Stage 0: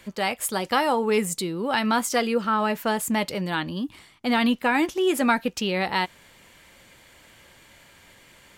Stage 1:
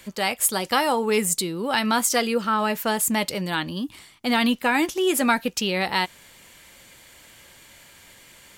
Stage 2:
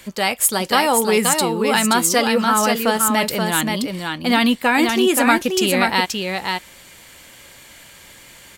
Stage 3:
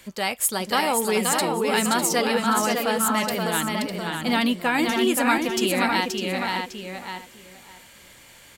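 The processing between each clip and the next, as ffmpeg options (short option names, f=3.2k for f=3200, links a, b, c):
-af "highshelf=f=4k:g=8.5"
-af "aecho=1:1:527:0.596,volume=4.5dB"
-filter_complex "[0:a]asplit=2[a][b];[b]adelay=603,lowpass=f=3.3k:p=1,volume=-4.5dB,asplit=2[c][d];[d]adelay=603,lowpass=f=3.3k:p=1,volume=0.2,asplit=2[e][f];[f]adelay=603,lowpass=f=3.3k:p=1,volume=0.2[g];[a][c][e][g]amix=inputs=4:normalize=0,volume=-6dB"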